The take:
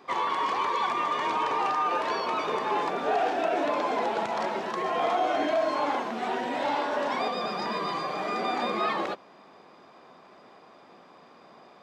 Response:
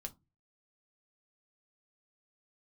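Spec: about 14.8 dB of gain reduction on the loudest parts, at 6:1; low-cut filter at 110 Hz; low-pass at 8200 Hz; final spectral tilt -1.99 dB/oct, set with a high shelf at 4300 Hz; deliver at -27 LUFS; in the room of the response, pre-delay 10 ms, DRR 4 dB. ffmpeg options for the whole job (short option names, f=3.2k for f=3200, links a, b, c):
-filter_complex "[0:a]highpass=110,lowpass=8.2k,highshelf=f=4.3k:g=-3,acompressor=threshold=-39dB:ratio=6,asplit=2[a][b];[1:a]atrim=start_sample=2205,adelay=10[c];[b][c]afir=irnorm=-1:irlink=0,volume=0dB[d];[a][d]amix=inputs=2:normalize=0,volume=12.5dB"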